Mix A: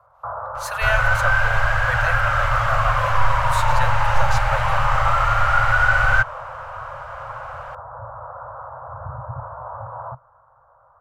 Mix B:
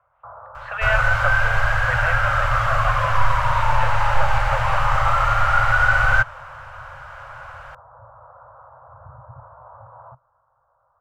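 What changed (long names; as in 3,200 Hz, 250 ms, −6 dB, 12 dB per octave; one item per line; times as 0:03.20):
speech: add Butterworth low-pass 3,000 Hz
first sound −10.5 dB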